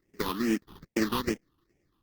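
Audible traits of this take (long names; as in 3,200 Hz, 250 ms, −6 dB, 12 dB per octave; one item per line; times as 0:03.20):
aliases and images of a low sample rate 1,500 Hz, jitter 20%
phaser sweep stages 6, 2.4 Hz, lowest notch 550–1,100 Hz
Opus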